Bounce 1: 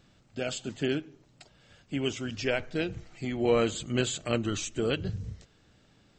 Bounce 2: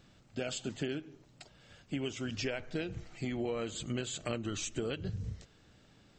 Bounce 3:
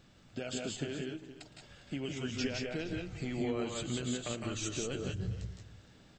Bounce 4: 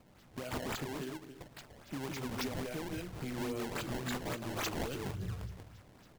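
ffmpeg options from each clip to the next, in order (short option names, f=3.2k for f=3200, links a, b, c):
-af "acompressor=threshold=-32dB:ratio=12"
-filter_complex "[0:a]alimiter=level_in=3dB:limit=-24dB:level=0:latency=1:release=383,volume=-3dB,asplit=2[a][b];[b]aecho=0:1:112|159|175|187|403|465:0.119|0.531|0.562|0.422|0.126|0.133[c];[a][c]amix=inputs=2:normalize=0"
-filter_complex "[0:a]acrossover=split=150|1300[a][b][c];[c]aexciter=amount=2.5:drive=7.8:freq=4.9k[d];[a][b][d]amix=inputs=3:normalize=0,acrusher=samples=21:mix=1:aa=0.000001:lfo=1:lforange=33.6:lforate=3.6,asoftclip=type=tanh:threshold=-30dB,volume=-1dB"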